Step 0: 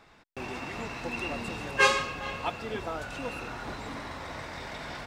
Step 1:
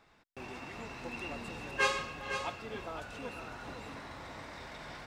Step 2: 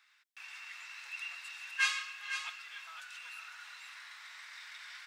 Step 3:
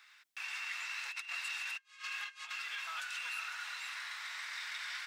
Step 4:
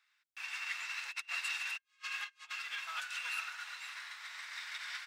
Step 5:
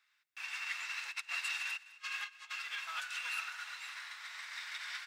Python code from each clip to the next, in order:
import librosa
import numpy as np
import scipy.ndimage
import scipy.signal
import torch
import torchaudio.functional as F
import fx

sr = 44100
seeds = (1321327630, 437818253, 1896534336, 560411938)

y1 = x + 10.0 ** (-8.5 / 20.0) * np.pad(x, (int(506 * sr / 1000.0), 0))[:len(x)]
y1 = y1 * librosa.db_to_amplitude(-7.5)
y2 = scipy.signal.sosfilt(scipy.signal.butter(4, 1500.0, 'highpass', fs=sr, output='sos'), y1)
y2 = y2 * librosa.db_to_amplitude(2.0)
y3 = fx.over_compress(y2, sr, threshold_db=-46.0, ratio=-0.5)
y3 = y3 * librosa.db_to_amplitude(3.5)
y4 = fx.upward_expand(y3, sr, threshold_db=-51.0, expansion=2.5)
y4 = y4 * librosa.db_to_amplitude(4.0)
y5 = fx.echo_feedback(y4, sr, ms=207, feedback_pct=37, wet_db=-19.0)